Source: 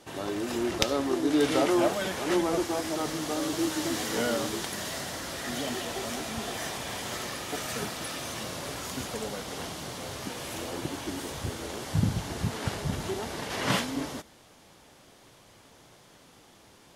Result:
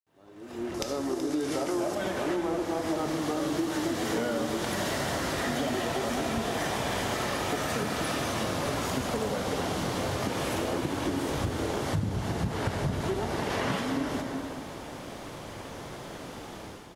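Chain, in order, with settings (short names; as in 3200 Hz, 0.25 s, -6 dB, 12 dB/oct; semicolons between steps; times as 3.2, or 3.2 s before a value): opening faded in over 4.77 s; 0.74–1.95 band shelf 7800 Hz +9.5 dB; in parallel at -2 dB: limiter -25 dBFS, peak gain reduction 11 dB; on the sum: requantised 12-bit, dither none; on a send at -7.5 dB: reverb RT60 1.5 s, pre-delay 12 ms; on the sum: AGC gain up to 12 dB; high shelf 2400 Hz -9 dB; compressor 6:1, threshold -26 dBFS, peak gain reduction 16.5 dB; echo 0.377 s -12 dB; gain -1.5 dB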